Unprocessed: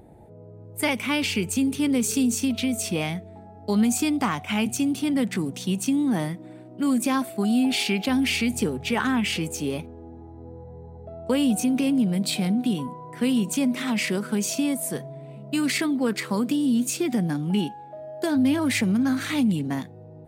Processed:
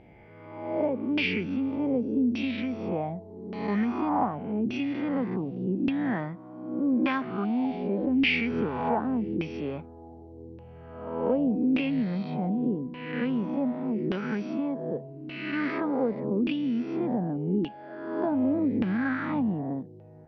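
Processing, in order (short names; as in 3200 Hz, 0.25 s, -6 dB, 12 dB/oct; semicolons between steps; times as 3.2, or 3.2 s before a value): spectral swells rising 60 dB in 1.05 s; LFO low-pass saw down 0.85 Hz 320–2700 Hz; gain -7 dB; MP2 48 kbps 32000 Hz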